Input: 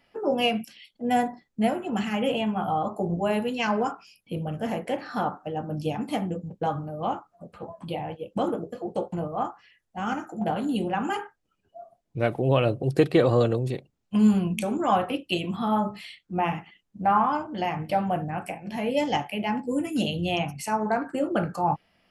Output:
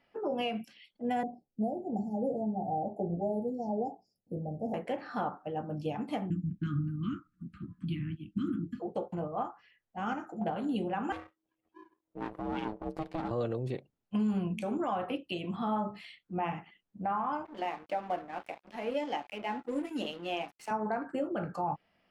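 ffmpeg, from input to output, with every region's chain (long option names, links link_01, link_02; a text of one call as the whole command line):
ffmpeg -i in.wav -filter_complex "[0:a]asettb=1/sr,asplit=3[link_01][link_02][link_03];[link_01]atrim=end=1.234[link_04];[link_02]atrim=start=1.23:end=4.74,asetpts=PTS-STARTPTS,afade=type=in:duration=0.004:curve=qsin,afade=type=out:start_time=3.506:duration=0.004:curve=qsin,asuperstop=centerf=2000:order=20:qfactor=0.52,equalizer=frequency=5600:width_type=o:width=2.7:gain=-11.5[link_05];[link_03]atrim=start=4.736[link_06];[link_04][link_05]acrossfade=duration=0.004:curve1=hsin:curve2=qsin[link_07];[link_07][link_06]acrossfade=duration=0.004:curve1=qsin:curve2=hsin,asettb=1/sr,asplit=3[link_08][link_09][link_10];[link_08]atrim=end=6.304[link_11];[link_09]atrim=start=6.3:end=8.8,asetpts=PTS-STARTPTS,afade=type=in:duration=0.004:curve=qsin,afade=type=out:start_time=2.496:duration=0.004:curve=qsin,asuperstop=centerf=640:order=12:qfactor=0.66,lowshelf=frequency=400:gain=11[link_12];[link_10]atrim=start=8.796[link_13];[link_11][link_12]acrossfade=duration=0.004:curve1=hsin:curve2=qsin[link_14];[link_14][link_13]acrossfade=duration=0.004:curve1=qsin:curve2=hsin,asettb=1/sr,asplit=3[link_15][link_16][link_17];[link_15]atrim=end=11.124[link_18];[link_16]atrim=start=11.12:end=13.31,asetpts=PTS-STARTPTS,afade=type=in:duration=0.004:curve=qsin,afade=type=out:start_time=2.186:duration=0.004:curve=qsin,aeval=exprs='max(val(0),0)':channel_layout=same,aeval=exprs='val(0)*sin(2*PI*320*n/s)':channel_layout=same[link_19];[link_17]atrim=start=13.306[link_20];[link_18][link_19]acrossfade=duration=0.004:curve1=hsin:curve2=qsin[link_21];[link_21][link_20]acrossfade=duration=0.004:curve1=qsin:curve2=hsin,asettb=1/sr,asplit=3[link_22][link_23][link_24];[link_22]atrim=end=17.454[link_25];[link_23]atrim=start=17.45:end=20.71,asetpts=PTS-STARTPTS,afade=type=in:duration=0.004:curve=qsin,afade=type=out:start_time=3.256:duration=0.004:curve=qsin,highpass=frequency=250:width=0.5412,highpass=frequency=250:width=1.3066,aeval=exprs='sgn(val(0))*max(abs(val(0))-0.00841,0)':channel_layout=same[link_26];[link_24]atrim=start=20.706[link_27];[link_25][link_26]acrossfade=duration=0.004:curve1=hsin:curve2=qsin[link_28];[link_28][link_27]acrossfade=duration=0.004:curve1=qsin:curve2=hsin,lowpass=frequency=2500:poles=1,lowshelf=frequency=140:gain=-6,alimiter=limit=-19.5dB:level=0:latency=1:release=154,volume=-4dB" out.wav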